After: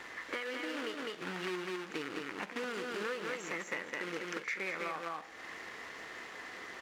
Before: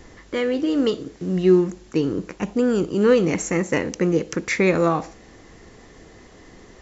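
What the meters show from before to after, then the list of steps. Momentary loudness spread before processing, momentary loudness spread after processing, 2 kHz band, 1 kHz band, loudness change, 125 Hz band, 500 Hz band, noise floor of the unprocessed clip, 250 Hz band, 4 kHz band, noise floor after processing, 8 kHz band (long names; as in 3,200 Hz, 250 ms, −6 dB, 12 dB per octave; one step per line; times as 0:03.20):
10 LU, 8 LU, −7.5 dB, −11.0 dB, −18.0 dB, −27.0 dB, −20.5 dB, −48 dBFS, −23.0 dB, −8.0 dB, −49 dBFS, can't be measured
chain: log-companded quantiser 4 bits
resonant band-pass 1,700 Hz, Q 1.2
on a send: single-tap delay 205 ms −4.5 dB
on the sum: downward compressor 6 to 1, threshold −43 dBFS, peak gain reduction 20.5 dB
echo ahead of the sound 42 ms −13 dB
level +6 dB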